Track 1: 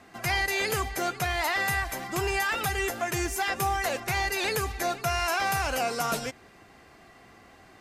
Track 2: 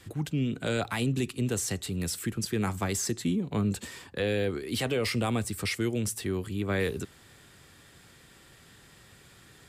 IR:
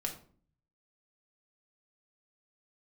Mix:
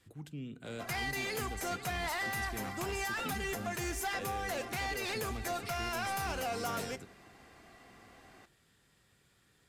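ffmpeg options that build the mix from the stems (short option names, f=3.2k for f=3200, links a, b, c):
-filter_complex "[0:a]asoftclip=type=tanh:threshold=-25.5dB,adelay=650,volume=-6dB,asplit=2[a][b];[b]volume=-12dB[c];[1:a]volume=-16dB,asplit=2[d][e];[e]volume=-12.5dB[f];[2:a]atrim=start_sample=2205[g];[c][f]amix=inputs=2:normalize=0[h];[h][g]afir=irnorm=-1:irlink=0[i];[a][d][i]amix=inputs=3:normalize=0,alimiter=level_in=4.5dB:limit=-24dB:level=0:latency=1:release=258,volume=-4.5dB"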